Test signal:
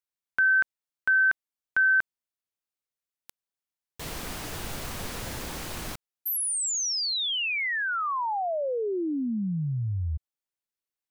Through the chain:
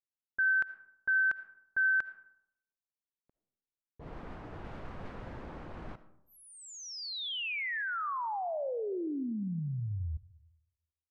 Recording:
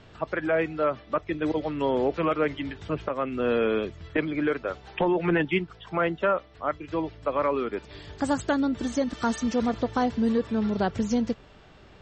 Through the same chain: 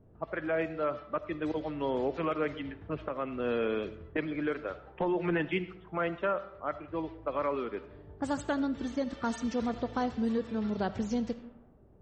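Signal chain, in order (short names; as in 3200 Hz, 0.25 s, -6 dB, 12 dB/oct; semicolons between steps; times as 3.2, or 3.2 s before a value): low-pass opened by the level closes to 450 Hz, open at -21.5 dBFS; digital reverb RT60 0.79 s, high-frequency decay 0.45×, pre-delay 30 ms, DRR 14 dB; gain -6.5 dB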